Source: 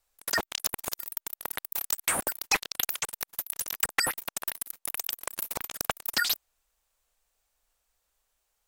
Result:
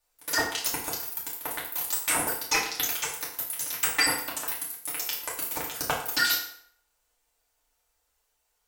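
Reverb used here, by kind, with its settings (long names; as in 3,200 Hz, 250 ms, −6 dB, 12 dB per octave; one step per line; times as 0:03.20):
feedback delay network reverb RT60 0.64 s, low-frequency decay 0.8×, high-frequency decay 0.8×, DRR −6 dB
level −4 dB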